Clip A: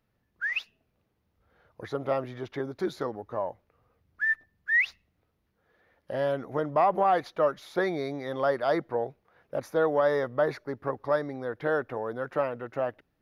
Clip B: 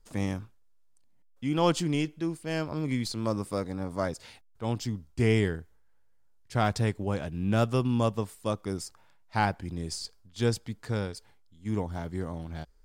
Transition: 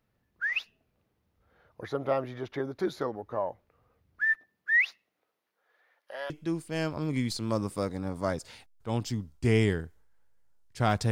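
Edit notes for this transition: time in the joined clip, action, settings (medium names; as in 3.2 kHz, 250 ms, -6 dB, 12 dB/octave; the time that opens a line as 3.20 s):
clip A
4.34–6.30 s: high-pass 200 Hz -> 1.1 kHz
6.30 s: go over to clip B from 2.05 s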